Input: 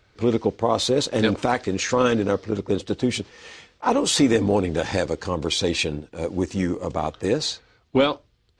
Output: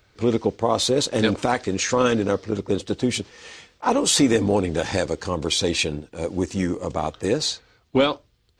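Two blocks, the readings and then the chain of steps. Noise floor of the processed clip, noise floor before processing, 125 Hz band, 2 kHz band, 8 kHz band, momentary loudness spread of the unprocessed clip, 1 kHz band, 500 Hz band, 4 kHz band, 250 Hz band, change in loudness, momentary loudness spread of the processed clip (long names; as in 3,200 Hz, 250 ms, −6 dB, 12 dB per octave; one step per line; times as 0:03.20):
−63 dBFS, −63 dBFS, 0.0 dB, +0.5 dB, +3.5 dB, 8 LU, 0.0 dB, 0.0 dB, +1.5 dB, 0.0 dB, +0.5 dB, 9 LU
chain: high-shelf EQ 8,700 Hz +10 dB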